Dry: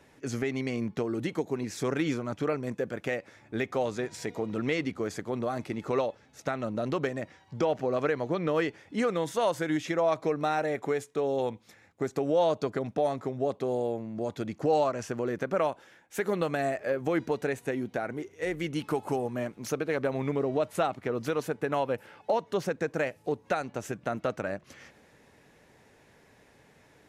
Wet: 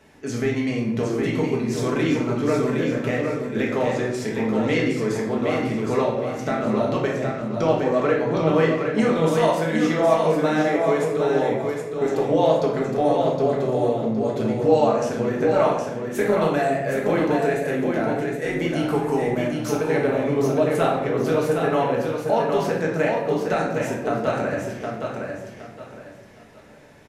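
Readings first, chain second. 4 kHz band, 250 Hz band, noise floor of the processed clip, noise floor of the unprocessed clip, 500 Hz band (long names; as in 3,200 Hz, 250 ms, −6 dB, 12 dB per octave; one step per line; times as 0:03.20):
+7.5 dB, +10.0 dB, −42 dBFS, −60 dBFS, +9.0 dB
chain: on a send: repeating echo 765 ms, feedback 29%, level −5 dB
on the sum: rectangular room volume 290 cubic metres, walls mixed, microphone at 1.5 metres
level +2 dB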